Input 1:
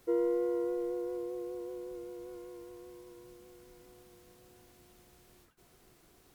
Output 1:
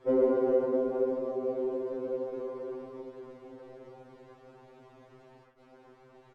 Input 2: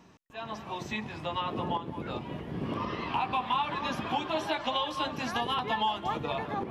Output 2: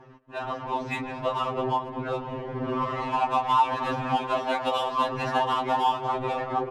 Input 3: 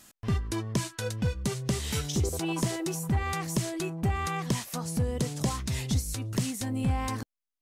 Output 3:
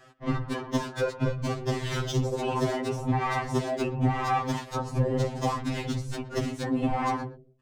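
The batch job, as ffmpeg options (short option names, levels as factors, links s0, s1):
-filter_complex "[0:a]equalizer=f=690:t=o:w=2.8:g=9,bandreject=f=109.1:t=h:w=4,bandreject=f=218.2:t=h:w=4,bandreject=f=327.3:t=h:w=4,bandreject=f=436.4:t=h:w=4,bandreject=f=545.5:t=h:w=4,bandreject=f=654.6:t=h:w=4,asplit=2[s0][s1];[s1]acompressor=threshold=0.0251:ratio=6,volume=1[s2];[s0][s2]amix=inputs=2:normalize=0,afftfilt=real='hypot(re,im)*cos(2*PI*random(0))':imag='hypot(re,im)*sin(2*PI*random(1))':win_size=512:overlap=0.75,adynamicsmooth=sensitivity=7:basefreq=3100,asplit=2[s3][s4];[s4]adelay=120,highpass=300,lowpass=3400,asoftclip=type=hard:threshold=0.0841,volume=0.126[s5];[s3][s5]amix=inputs=2:normalize=0,afftfilt=real='re*2.45*eq(mod(b,6),0)':imag='im*2.45*eq(mod(b,6),0)':win_size=2048:overlap=0.75,volume=1.68"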